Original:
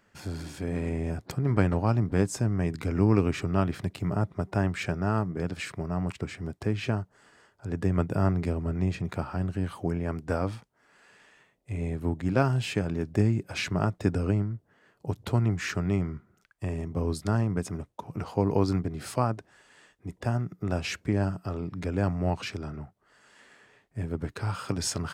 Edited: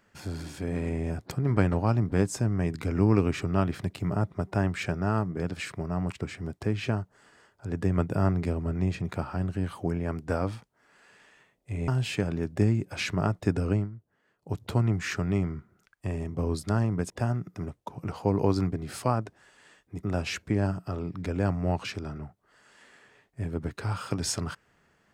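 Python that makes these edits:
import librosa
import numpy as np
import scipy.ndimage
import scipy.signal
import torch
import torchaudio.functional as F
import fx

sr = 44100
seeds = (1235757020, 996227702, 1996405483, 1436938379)

y = fx.edit(x, sr, fx.cut(start_s=11.88, length_s=0.58),
    fx.fade_down_up(start_s=14.35, length_s=0.78, db=-9.0, fade_s=0.13),
    fx.move(start_s=20.15, length_s=0.46, to_s=17.68), tone=tone)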